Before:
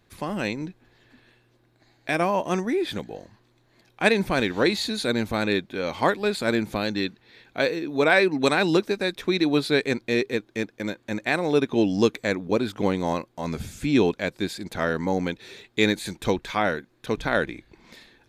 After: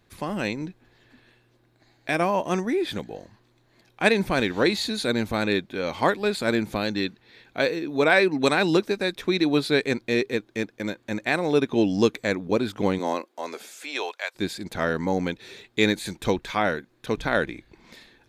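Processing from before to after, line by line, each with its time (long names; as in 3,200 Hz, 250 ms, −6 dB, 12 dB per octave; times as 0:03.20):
0:12.98–0:14.34: high-pass filter 210 Hz → 800 Hz 24 dB per octave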